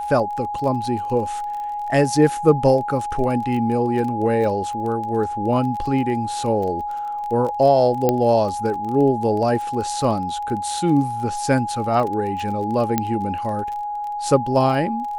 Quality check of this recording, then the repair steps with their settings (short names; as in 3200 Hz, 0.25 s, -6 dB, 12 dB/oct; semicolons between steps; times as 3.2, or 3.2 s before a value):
crackle 22/s -27 dBFS
tone 830 Hz -24 dBFS
8.09 pop -5 dBFS
12.98 pop -5 dBFS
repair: de-click; notch 830 Hz, Q 30